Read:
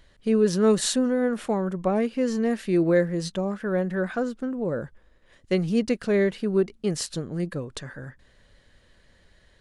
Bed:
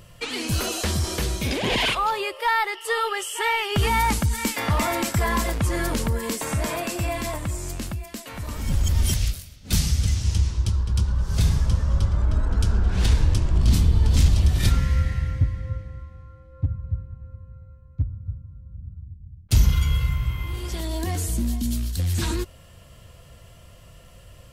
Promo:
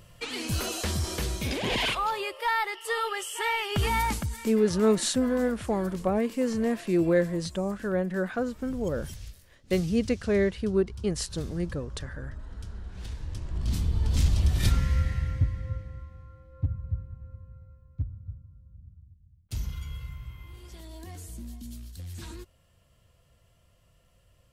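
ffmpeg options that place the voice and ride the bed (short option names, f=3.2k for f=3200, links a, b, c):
-filter_complex "[0:a]adelay=4200,volume=-2.5dB[a];[1:a]volume=10dB,afade=t=out:st=3.97:d=0.59:silence=0.199526,afade=t=in:st=13.19:d=1.44:silence=0.177828,afade=t=out:st=17.3:d=1.94:silence=0.251189[b];[a][b]amix=inputs=2:normalize=0"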